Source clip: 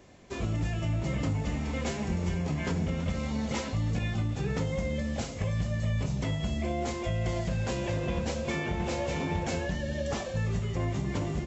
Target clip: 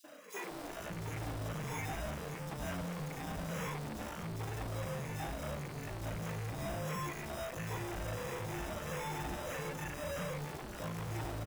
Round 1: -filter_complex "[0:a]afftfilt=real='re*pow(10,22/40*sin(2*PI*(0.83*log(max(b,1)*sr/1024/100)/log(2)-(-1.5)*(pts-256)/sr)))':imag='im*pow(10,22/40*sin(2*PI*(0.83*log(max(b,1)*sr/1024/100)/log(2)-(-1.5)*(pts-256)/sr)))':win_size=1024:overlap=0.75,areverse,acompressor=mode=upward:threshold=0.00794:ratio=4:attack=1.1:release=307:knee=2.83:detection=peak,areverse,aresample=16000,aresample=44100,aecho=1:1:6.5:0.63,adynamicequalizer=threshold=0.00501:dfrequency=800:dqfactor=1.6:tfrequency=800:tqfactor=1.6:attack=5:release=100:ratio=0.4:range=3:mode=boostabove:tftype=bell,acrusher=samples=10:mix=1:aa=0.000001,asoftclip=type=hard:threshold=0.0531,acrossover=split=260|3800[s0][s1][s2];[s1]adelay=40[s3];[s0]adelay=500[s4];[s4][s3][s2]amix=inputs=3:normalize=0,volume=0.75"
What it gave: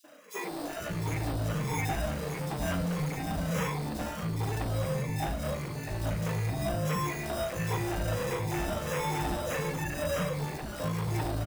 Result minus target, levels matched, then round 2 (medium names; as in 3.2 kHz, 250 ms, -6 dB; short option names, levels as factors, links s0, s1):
hard clipper: distortion -5 dB
-filter_complex "[0:a]afftfilt=real='re*pow(10,22/40*sin(2*PI*(0.83*log(max(b,1)*sr/1024/100)/log(2)-(-1.5)*(pts-256)/sr)))':imag='im*pow(10,22/40*sin(2*PI*(0.83*log(max(b,1)*sr/1024/100)/log(2)-(-1.5)*(pts-256)/sr)))':win_size=1024:overlap=0.75,areverse,acompressor=mode=upward:threshold=0.00794:ratio=4:attack=1.1:release=307:knee=2.83:detection=peak,areverse,aresample=16000,aresample=44100,aecho=1:1:6.5:0.63,adynamicequalizer=threshold=0.00501:dfrequency=800:dqfactor=1.6:tfrequency=800:tqfactor=1.6:attack=5:release=100:ratio=0.4:range=3:mode=boostabove:tftype=bell,acrusher=samples=10:mix=1:aa=0.000001,asoftclip=type=hard:threshold=0.0158,acrossover=split=260|3800[s0][s1][s2];[s1]adelay=40[s3];[s0]adelay=500[s4];[s4][s3][s2]amix=inputs=3:normalize=0,volume=0.75"